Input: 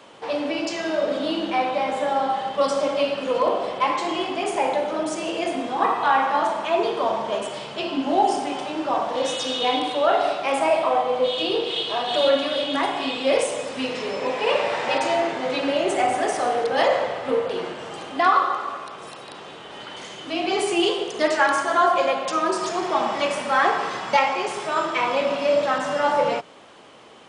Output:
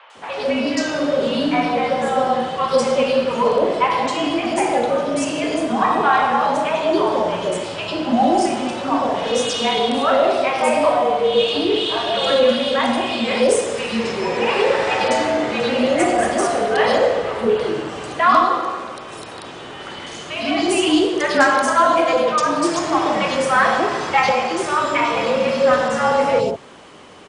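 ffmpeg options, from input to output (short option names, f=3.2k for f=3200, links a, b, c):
-filter_complex "[0:a]acrossover=split=750|3200[a][b][c];[c]adelay=100[d];[a]adelay=150[e];[e][b][d]amix=inputs=3:normalize=0,acontrast=72,afreqshift=-35"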